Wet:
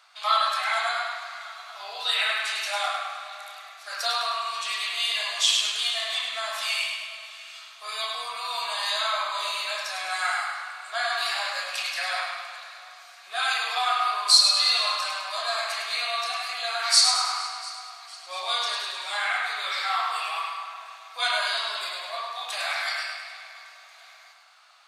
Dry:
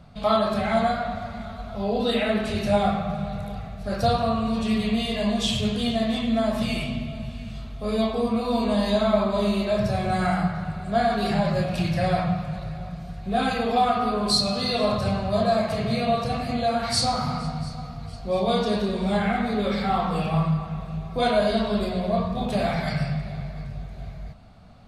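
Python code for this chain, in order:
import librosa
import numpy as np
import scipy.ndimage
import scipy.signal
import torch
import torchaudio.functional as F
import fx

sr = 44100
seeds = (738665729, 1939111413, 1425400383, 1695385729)

y = scipy.signal.sosfilt(scipy.signal.butter(4, 1100.0, 'highpass', fs=sr, output='sos'), x)
y = fx.peak_eq(y, sr, hz=6700.0, db=4.5, octaves=0.82)
y = fx.echo_feedback(y, sr, ms=103, feedback_pct=50, wet_db=-6.0)
y = y * librosa.db_to_amplitude(4.5)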